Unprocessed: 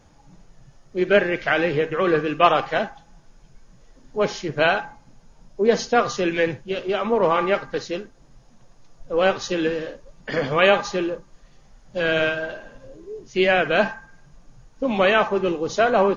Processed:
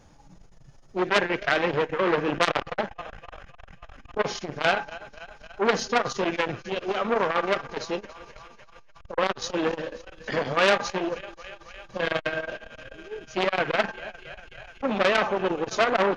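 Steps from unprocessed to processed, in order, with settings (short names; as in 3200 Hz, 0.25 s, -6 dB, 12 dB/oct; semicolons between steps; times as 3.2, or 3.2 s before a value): 2.28–4.22 low shelf 360 Hz +6 dB; on a send: thinning echo 0.274 s, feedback 84%, high-pass 460 Hz, level -19 dB; on the sum: core saturation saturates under 3500 Hz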